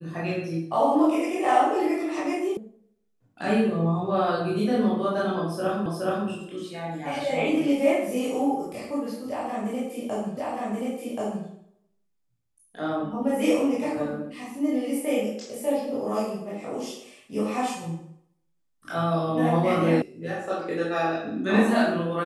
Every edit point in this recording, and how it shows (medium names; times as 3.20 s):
2.57 s: sound stops dead
5.86 s: repeat of the last 0.42 s
10.37 s: repeat of the last 1.08 s
20.02 s: sound stops dead